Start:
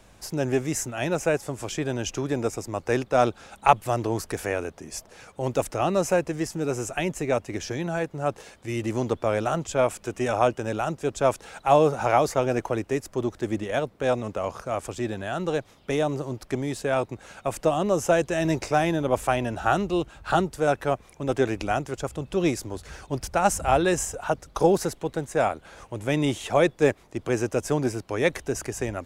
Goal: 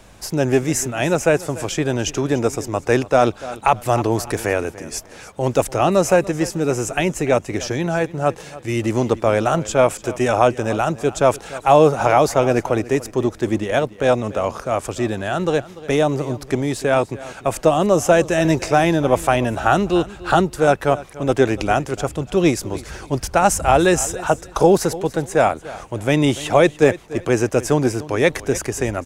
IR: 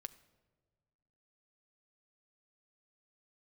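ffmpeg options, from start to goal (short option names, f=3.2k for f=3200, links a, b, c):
-af "aecho=1:1:292|584:0.126|0.0352,alimiter=level_in=8.5dB:limit=-1dB:release=50:level=0:latency=1,volume=-1dB"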